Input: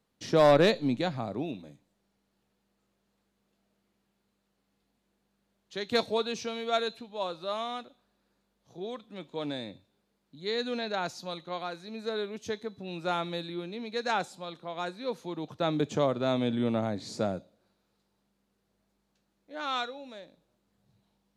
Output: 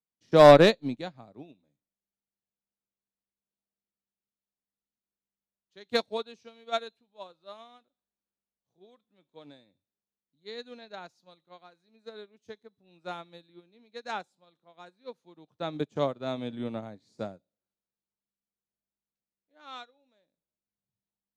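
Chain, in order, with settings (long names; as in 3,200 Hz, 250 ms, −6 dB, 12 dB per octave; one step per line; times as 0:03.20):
expander for the loud parts 2.5 to 1, over −40 dBFS
level +8 dB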